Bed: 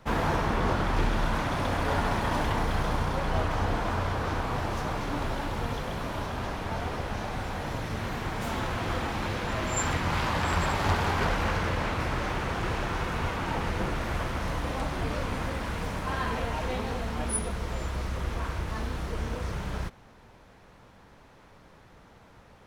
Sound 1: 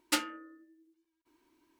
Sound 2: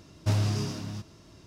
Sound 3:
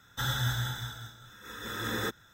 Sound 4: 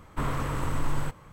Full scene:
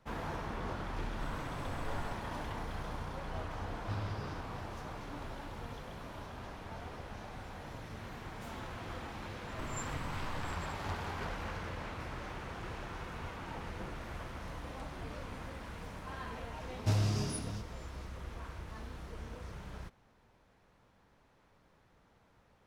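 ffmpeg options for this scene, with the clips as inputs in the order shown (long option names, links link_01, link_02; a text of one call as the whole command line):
ffmpeg -i bed.wav -i cue0.wav -i cue1.wav -i cue2.wav -i cue3.wav -filter_complex "[4:a]asplit=2[link_01][link_02];[2:a]asplit=2[link_03][link_04];[0:a]volume=-13dB[link_05];[link_03]lowpass=frequency=4600:width=0.5412,lowpass=frequency=4600:width=1.3066[link_06];[link_02]acompressor=threshold=-33dB:ratio=6:attack=3.2:release=140:knee=1:detection=peak[link_07];[link_01]atrim=end=1.32,asetpts=PTS-STARTPTS,volume=-16dB,afade=type=in:duration=0.004:curve=hsin,afade=type=out:start_time=1.316:duration=0.004:curve=hsin,adelay=1030[link_08];[link_06]atrim=end=1.46,asetpts=PTS-STARTPTS,volume=-14dB,afade=type=in:duration=0.004:curve=hsin,afade=type=out:start_time=1.456:duration=0.004:curve=hsin,adelay=3620[link_09];[link_07]atrim=end=1.32,asetpts=PTS-STARTPTS,volume=-6dB,afade=type=in:duration=0.004:curve=hsin,afade=type=out:start_time=1.316:duration=0.004:curve=hsin,adelay=9420[link_10];[link_04]atrim=end=1.46,asetpts=PTS-STARTPTS,volume=-4.5dB,afade=type=in:duration=0.004:curve=hsin,afade=type=out:start_time=1.456:duration=0.004:curve=hsin,adelay=16600[link_11];[link_05][link_08][link_09][link_10][link_11]amix=inputs=5:normalize=0" out.wav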